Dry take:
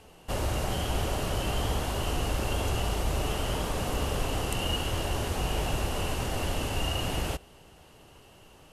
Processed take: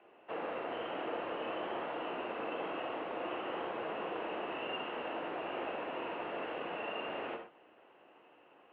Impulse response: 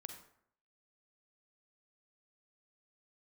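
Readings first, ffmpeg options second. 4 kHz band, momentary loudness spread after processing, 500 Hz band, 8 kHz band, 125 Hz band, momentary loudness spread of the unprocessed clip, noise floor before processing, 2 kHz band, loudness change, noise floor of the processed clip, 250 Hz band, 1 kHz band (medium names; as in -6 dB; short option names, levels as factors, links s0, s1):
-13.5 dB, 1 LU, -4.0 dB, under -40 dB, -29.5 dB, 2 LU, -55 dBFS, -5.5 dB, -8.5 dB, -63 dBFS, -8.5 dB, -4.5 dB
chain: -filter_complex "[0:a]highpass=f=220:t=q:w=0.5412,highpass=f=220:t=q:w=1.307,lowpass=f=3400:t=q:w=0.5176,lowpass=f=3400:t=q:w=0.7071,lowpass=f=3400:t=q:w=1.932,afreqshift=-83,acrossover=split=310 2600:gain=0.126 1 0.112[s0][s1][s2];[s0][s1][s2]amix=inputs=3:normalize=0[s3];[1:a]atrim=start_sample=2205,atrim=end_sample=6174[s4];[s3][s4]afir=irnorm=-1:irlink=0,volume=1.26"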